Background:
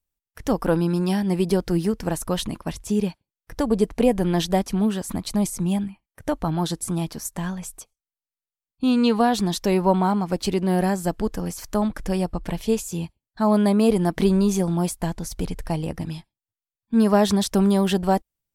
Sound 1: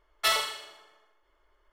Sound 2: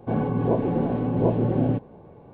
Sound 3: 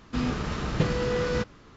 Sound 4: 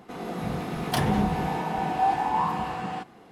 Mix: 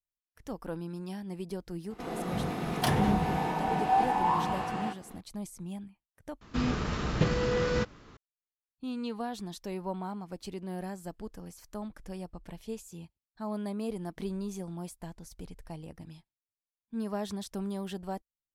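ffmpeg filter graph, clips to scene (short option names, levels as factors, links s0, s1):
-filter_complex "[0:a]volume=0.141,asplit=2[s0][s1];[s0]atrim=end=6.414[s2];[3:a]atrim=end=1.76,asetpts=PTS-STARTPTS,volume=0.841[s3];[s1]atrim=start=8.166[s4];[4:a]atrim=end=3.31,asetpts=PTS-STARTPTS,volume=0.794,afade=t=in:d=0.004:c=hsin,afade=t=out:st=3.306:d=0.004:c=hsin,adelay=1900[s5];[s2][s3]acrossfade=d=0.004:c1=hsin:c2=hsin[s6];[s6][s4]acrossfade=d=0.004:c1=hsin:c2=hsin[s7];[s7][s5]amix=inputs=2:normalize=0"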